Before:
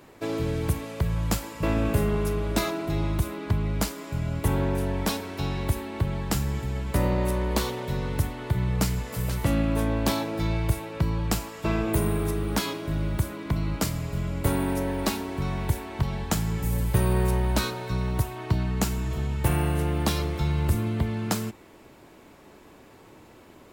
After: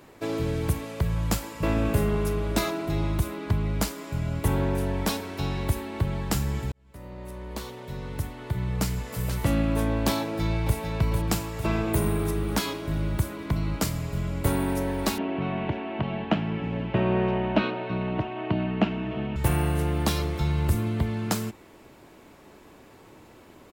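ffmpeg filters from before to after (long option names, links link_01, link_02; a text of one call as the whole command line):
ffmpeg -i in.wav -filter_complex "[0:a]asplit=2[link_01][link_02];[link_02]afade=type=in:start_time=10.21:duration=0.01,afade=type=out:start_time=10.76:duration=0.01,aecho=0:1:450|900|1350|1800|2250|2700|3150|3600:0.530884|0.318531|0.191118|0.114671|0.0688026|0.0412816|0.0247689|0.0148614[link_03];[link_01][link_03]amix=inputs=2:normalize=0,asettb=1/sr,asplit=3[link_04][link_05][link_06];[link_04]atrim=end=15.184[link_07];[link_05]atrim=start=15.18:end=19.36,asetpts=PTS-STARTPTS,afade=type=in:duration=0.004:curve=qsin,afade=type=out:start_time=4.176:duration=0.004:curve=qsin,highpass=150,equalizer=frequency=210:width_type=q:width=4:gain=7,equalizer=frequency=310:width_type=q:width=4:gain=7,equalizer=frequency=650:width_type=q:width=4:gain=9,equalizer=frequency=2800:width_type=q:width=4:gain=9,lowpass=frequency=3000:width=0.5412,lowpass=frequency=3000:width=1.3066[link_08];[link_06]atrim=start=19.356[link_09];[link_07][link_08]acrossfade=duration=0.004:curve1=hsin:curve2=qsin[link_10];[link_10][link_09]acrossfade=duration=0.004:curve1=qsin:curve2=hsin,asplit=2[link_11][link_12];[link_11]atrim=end=6.72,asetpts=PTS-STARTPTS,afade=type=out:start_time=6.716:duration=0.004:curve=hsin[link_13];[link_12]atrim=start=6.72,asetpts=PTS-STARTPTS,afade=type=in:duration=2.71[link_14];[link_13][link_14]concat=n=2:v=0:a=1" out.wav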